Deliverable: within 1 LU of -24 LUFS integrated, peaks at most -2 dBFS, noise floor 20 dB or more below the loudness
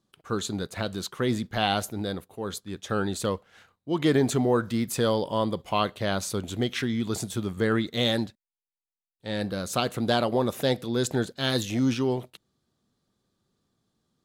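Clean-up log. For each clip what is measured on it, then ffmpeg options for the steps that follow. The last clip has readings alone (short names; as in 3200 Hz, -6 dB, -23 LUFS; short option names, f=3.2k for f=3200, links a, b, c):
loudness -27.5 LUFS; peak -8.5 dBFS; loudness target -24.0 LUFS
-> -af "volume=3.5dB"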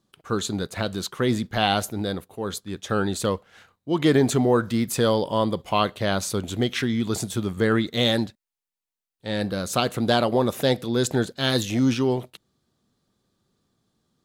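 loudness -24.0 LUFS; peak -5.0 dBFS; noise floor -89 dBFS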